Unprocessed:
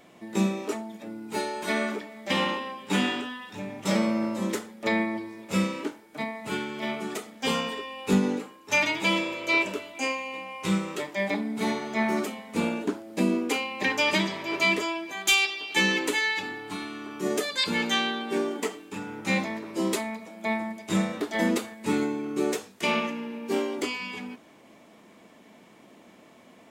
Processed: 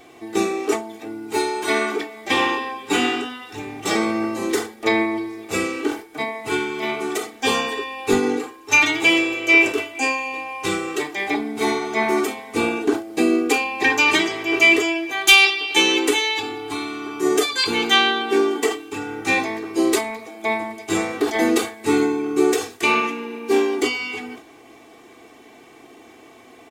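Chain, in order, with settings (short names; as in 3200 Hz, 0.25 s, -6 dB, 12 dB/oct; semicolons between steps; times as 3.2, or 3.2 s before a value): comb 2.6 ms, depth 86%; sustainer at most 140 dB/s; gain +5.5 dB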